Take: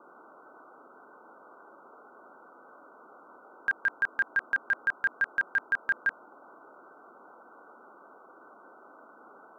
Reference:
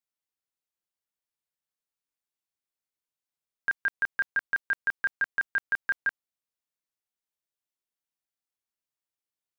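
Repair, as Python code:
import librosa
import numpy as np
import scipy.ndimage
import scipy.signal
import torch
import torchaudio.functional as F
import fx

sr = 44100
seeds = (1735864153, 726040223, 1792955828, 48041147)

y = fx.noise_reduce(x, sr, print_start_s=0.75, print_end_s=1.25, reduce_db=30.0)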